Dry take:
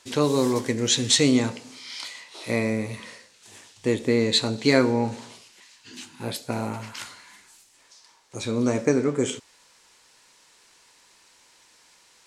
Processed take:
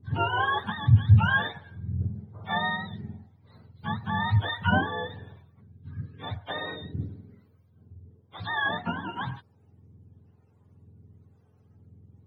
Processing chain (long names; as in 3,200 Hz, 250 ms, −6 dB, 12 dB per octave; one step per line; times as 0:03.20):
frequency axis turned over on the octave scale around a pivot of 640 Hz
two-band tremolo in antiphase 1 Hz, depth 70%, crossover 460 Hz